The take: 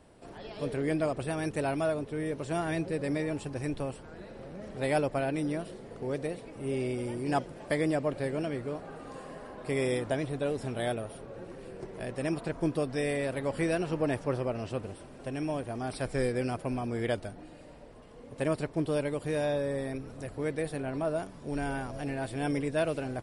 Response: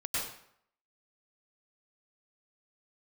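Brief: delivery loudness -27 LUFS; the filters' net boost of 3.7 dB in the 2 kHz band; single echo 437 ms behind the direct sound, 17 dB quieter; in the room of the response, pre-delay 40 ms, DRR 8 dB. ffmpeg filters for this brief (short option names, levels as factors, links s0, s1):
-filter_complex "[0:a]equalizer=f=2000:t=o:g=4.5,aecho=1:1:437:0.141,asplit=2[s0][s1];[1:a]atrim=start_sample=2205,adelay=40[s2];[s1][s2]afir=irnorm=-1:irlink=0,volume=0.211[s3];[s0][s3]amix=inputs=2:normalize=0,volume=1.68"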